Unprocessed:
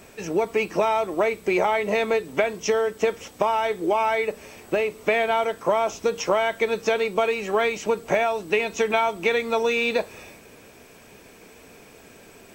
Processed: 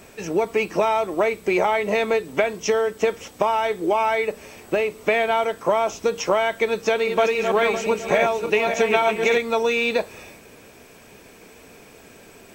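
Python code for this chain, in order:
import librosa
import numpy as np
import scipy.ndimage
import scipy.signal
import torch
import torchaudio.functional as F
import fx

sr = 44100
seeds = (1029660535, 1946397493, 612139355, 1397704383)

y = fx.reverse_delay_fb(x, sr, ms=279, feedback_pct=50, wet_db=-5, at=(6.79, 9.38))
y = F.gain(torch.from_numpy(y), 1.5).numpy()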